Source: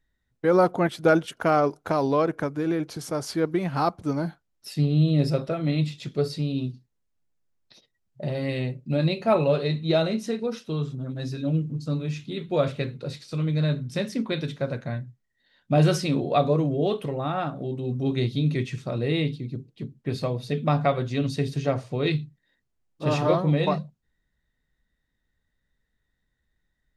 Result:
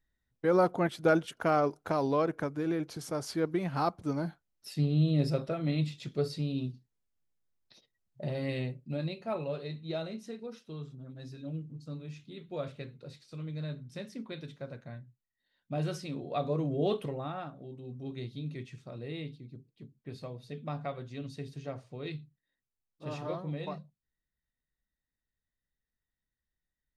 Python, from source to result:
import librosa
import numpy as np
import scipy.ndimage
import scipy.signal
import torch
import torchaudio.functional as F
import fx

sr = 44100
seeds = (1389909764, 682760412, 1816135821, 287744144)

y = fx.gain(x, sr, db=fx.line((8.59, -6.0), (9.21, -14.0), (16.19, -14.0), (16.93, -4.0), (17.57, -15.0)))